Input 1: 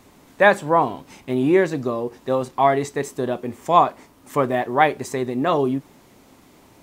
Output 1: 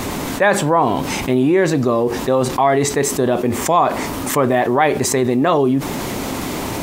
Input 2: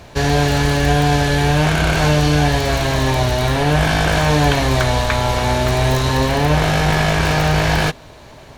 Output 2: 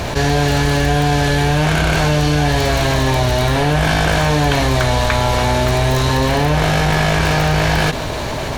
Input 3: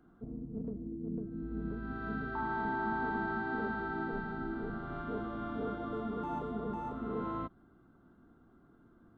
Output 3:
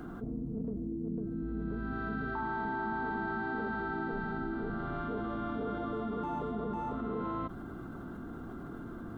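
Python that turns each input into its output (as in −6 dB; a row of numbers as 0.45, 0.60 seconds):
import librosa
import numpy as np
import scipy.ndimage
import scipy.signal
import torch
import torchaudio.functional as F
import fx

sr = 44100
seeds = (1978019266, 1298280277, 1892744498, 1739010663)

y = fx.env_flatten(x, sr, amount_pct=70)
y = y * 10.0 ** (-1.5 / 20.0)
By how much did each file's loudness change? +3.5, +0.5, +1.0 LU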